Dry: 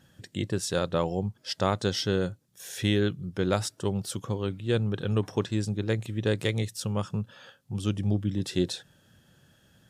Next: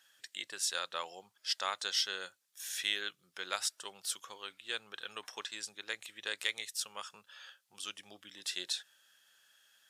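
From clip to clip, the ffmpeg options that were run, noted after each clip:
-af "highpass=1.5k"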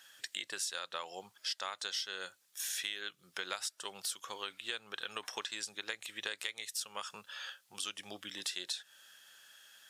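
-af "acompressor=threshold=-44dB:ratio=6,volume=8dB"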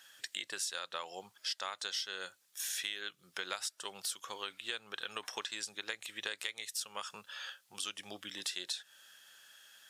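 -af anull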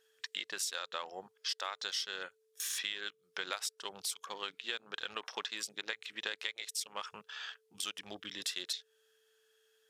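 -af "afwtdn=0.00316,aeval=exprs='val(0)+0.000224*sin(2*PI*440*n/s)':c=same,volume=1dB"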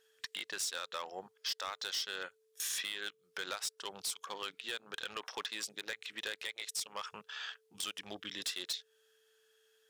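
-af "volume=32dB,asoftclip=hard,volume=-32dB,volume=1dB"

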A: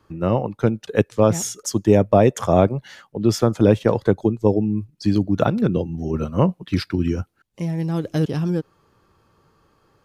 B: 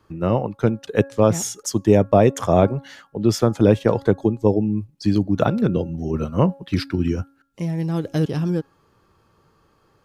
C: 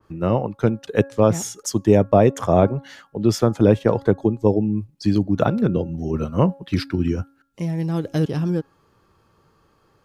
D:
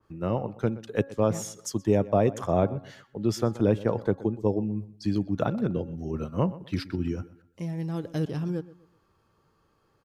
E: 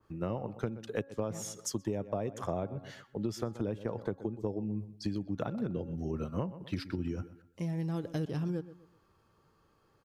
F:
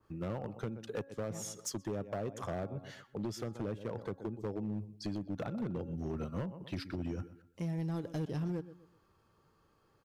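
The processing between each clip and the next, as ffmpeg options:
-af "bandreject=f=275.7:t=h:w=4,bandreject=f=551.4:t=h:w=4,bandreject=f=827.1:t=h:w=4,bandreject=f=1.1028k:t=h:w=4,bandreject=f=1.3785k:t=h:w=4,bandreject=f=1.6542k:t=h:w=4"
-af "adynamicequalizer=threshold=0.0158:dfrequency=2200:dqfactor=0.7:tfrequency=2200:tqfactor=0.7:attack=5:release=100:ratio=0.375:range=2.5:mode=cutabove:tftype=highshelf"
-filter_complex "[0:a]asplit=2[a][b];[b]adelay=124,lowpass=f=3.7k:p=1,volume=-18dB,asplit=2[c][d];[d]adelay=124,lowpass=f=3.7k:p=1,volume=0.32,asplit=2[e][f];[f]adelay=124,lowpass=f=3.7k:p=1,volume=0.32[g];[a][c][e][g]amix=inputs=4:normalize=0,volume=-8dB"
-af "acompressor=threshold=-29dB:ratio=12,volume=-1dB"
-af "asoftclip=type=hard:threshold=-30dB,volume=-1.5dB"

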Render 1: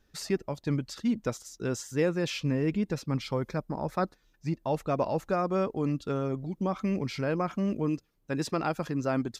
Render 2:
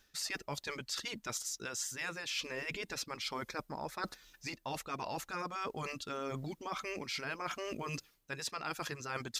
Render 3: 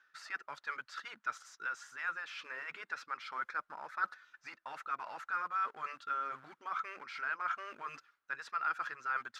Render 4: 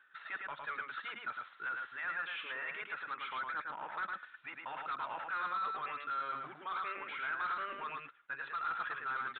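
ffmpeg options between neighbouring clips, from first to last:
-af "afftfilt=real='re*lt(hypot(re,im),0.224)':imag='im*lt(hypot(re,im),0.224)':win_size=1024:overlap=0.75,tiltshelf=f=970:g=-8,areverse,acompressor=threshold=-43dB:ratio=8,areverse,volume=6.5dB"
-filter_complex "[0:a]asplit=2[a][b];[b]aeval=exprs='(mod(94.4*val(0)+1,2)-1)/94.4':c=same,volume=-12dB[c];[a][c]amix=inputs=2:normalize=0,bandpass=f=1.4k:t=q:w=4.7:csg=0,volume=9dB"
-af "aresample=16000,asoftclip=type=tanh:threshold=-37.5dB,aresample=44100,aecho=1:1:108:0.668,aresample=8000,aresample=44100,volume=3.5dB"

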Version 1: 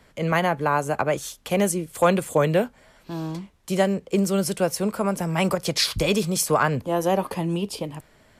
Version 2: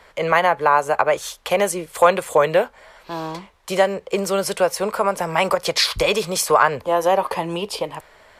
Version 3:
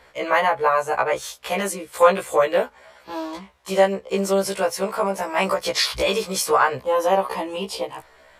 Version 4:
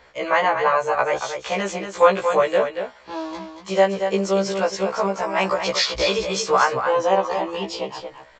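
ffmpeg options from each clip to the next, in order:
-filter_complex "[0:a]equalizer=f=125:t=o:w=1:g=-7,equalizer=f=250:t=o:w=1:g=-8,equalizer=f=500:t=o:w=1:g=6,equalizer=f=1k:t=o:w=1:g=8,equalizer=f=2k:t=o:w=1:g=5,equalizer=f=4k:t=o:w=1:g=4,asplit=2[a][b];[b]acompressor=threshold=-21dB:ratio=6,volume=-1dB[c];[a][c]amix=inputs=2:normalize=0,volume=-3.5dB"
-af "afftfilt=real='re*1.73*eq(mod(b,3),0)':imag='im*1.73*eq(mod(b,3),0)':win_size=2048:overlap=0.75"
-af "aecho=1:1:232:0.422,aresample=16000,aresample=44100"

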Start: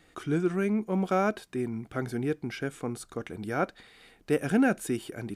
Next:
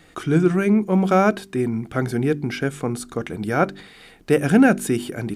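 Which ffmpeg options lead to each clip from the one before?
-af "equalizer=f=160:t=o:w=0.66:g=4,bandreject=f=48.81:t=h:w=4,bandreject=f=97.62:t=h:w=4,bandreject=f=146.43:t=h:w=4,bandreject=f=195.24:t=h:w=4,bandreject=f=244.05:t=h:w=4,bandreject=f=292.86:t=h:w=4,bandreject=f=341.67:t=h:w=4,bandreject=f=390.48:t=h:w=4,volume=9dB"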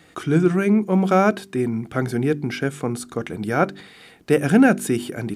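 -af "highpass=72"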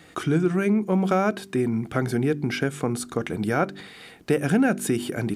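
-af "acompressor=threshold=-22dB:ratio=2.5,volume=1.5dB"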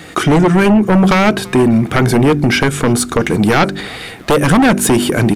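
-filter_complex "[0:a]aeval=exprs='0.376*sin(PI/2*3.16*val(0)/0.376)':c=same,asplit=4[a][b][c][d];[b]adelay=335,afreqshift=-54,volume=-23.5dB[e];[c]adelay=670,afreqshift=-108,volume=-30.1dB[f];[d]adelay=1005,afreqshift=-162,volume=-36.6dB[g];[a][e][f][g]amix=inputs=4:normalize=0,volume=2.5dB"

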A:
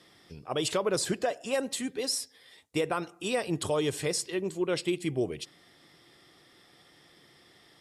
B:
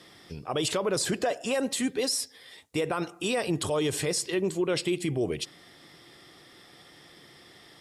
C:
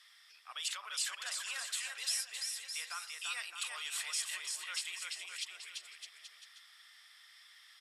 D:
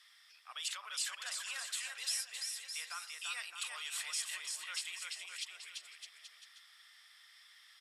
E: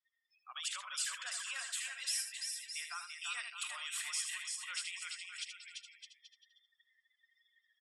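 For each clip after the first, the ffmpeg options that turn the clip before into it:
-af "alimiter=level_in=1dB:limit=-24dB:level=0:latency=1:release=34,volume=-1dB,volume=6dB"
-af "highpass=f=1.3k:w=0.5412,highpass=f=1.3k:w=1.3066,aecho=1:1:340|612|829.6|1004|1143:0.631|0.398|0.251|0.158|0.1,volume=-6.5dB"
-af "highpass=350,volume=-1.5dB"
-af "afftdn=nr=35:nf=-51,equalizer=f=4.2k:t=o:w=0.48:g=-4.5,aecho=1:1:77:0.398,volume=1dB"

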